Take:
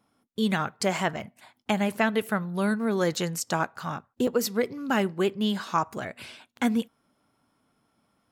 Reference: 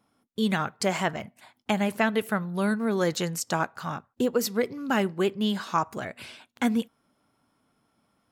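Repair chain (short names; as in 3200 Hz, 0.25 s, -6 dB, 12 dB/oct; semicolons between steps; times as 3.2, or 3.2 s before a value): interpolate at 4.27, 4.1 ms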